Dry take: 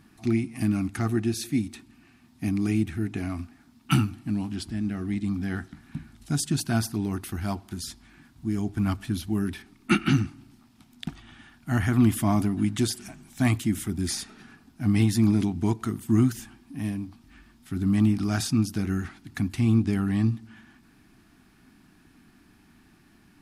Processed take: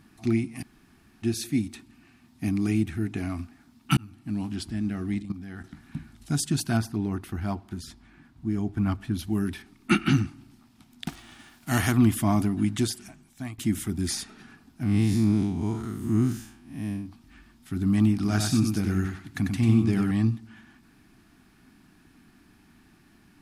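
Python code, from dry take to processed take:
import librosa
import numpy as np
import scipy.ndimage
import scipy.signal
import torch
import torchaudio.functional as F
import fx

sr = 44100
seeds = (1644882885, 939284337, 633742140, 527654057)

y = fx.level_steps(x, sr, step_db=13, at=(5.22, 5.64))
y = fx.high_shelf(y, sr, hz=3500.0, db=-10.5, at=(6.77, 9.19))
y = fx.envelope_flatten(y, sr, power=0.6, at=(11.06, 11.91), fade=0.02)
y = fx.spec_blur(y, sr, span_ms=147.0, at=(14.83, 17.06))
y = fx.echo_feedback(y, sr, ms=95, feedback_pct=18, wet_db=-4.5, at=(18.15, 20.11))
y = fx.edit(y, sr, fx.room_tone_fill(start_s=0.62, length_s=0.61, crossfade_s=0.02),
    fx.fade_in_span(start_s=3.97, length_s=0.49),
    fx.fade_out_to(start_s=12.75, length_s=0.83, floor_db=-21.5), tone=tone)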